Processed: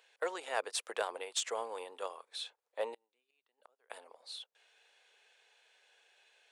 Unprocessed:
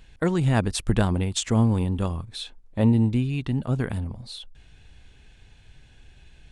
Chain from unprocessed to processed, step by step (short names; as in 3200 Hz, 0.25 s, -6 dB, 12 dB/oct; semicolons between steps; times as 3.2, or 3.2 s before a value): elliptic high-pass 470 Hz, stop band 80 dB; 2.94–3.9 flipped gate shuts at -35 dBFS, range -33 dB; in parallel at -8 dB: hard clip -22 dBFS, distortion -13 dB; on the sum: gain -9 dB